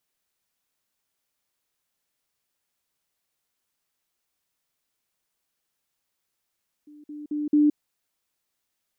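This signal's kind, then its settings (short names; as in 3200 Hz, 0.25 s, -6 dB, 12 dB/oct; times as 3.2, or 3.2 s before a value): level ladder 297 Hz -45 dBFS, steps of 10 dB, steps 4, 0.17 s 0.05 s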